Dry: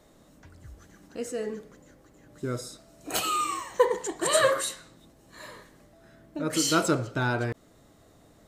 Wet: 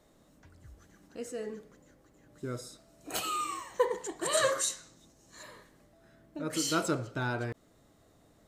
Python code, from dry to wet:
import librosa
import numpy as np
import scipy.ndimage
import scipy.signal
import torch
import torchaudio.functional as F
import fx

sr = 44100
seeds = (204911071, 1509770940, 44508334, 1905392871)

y = fx.peak_eq(x, sr, hz=6300.0, db=12.5, octaves=0.74, at=(4.37, 5.43))
y = y * 10.0 ** (-6.0 / 20.0)